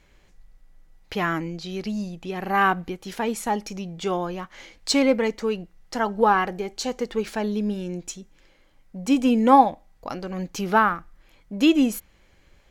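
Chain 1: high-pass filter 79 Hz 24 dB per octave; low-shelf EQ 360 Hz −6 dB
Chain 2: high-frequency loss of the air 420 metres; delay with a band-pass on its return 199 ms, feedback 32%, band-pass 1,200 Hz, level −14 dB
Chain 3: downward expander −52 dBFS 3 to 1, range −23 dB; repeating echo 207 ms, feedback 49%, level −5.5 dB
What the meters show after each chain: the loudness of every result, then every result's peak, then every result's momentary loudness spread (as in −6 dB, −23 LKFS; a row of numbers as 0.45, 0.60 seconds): −25.5, −25.0, −23.0 LKFS; −4.0, −5.5, −3.0 dBFS; 16, 15, 13 LU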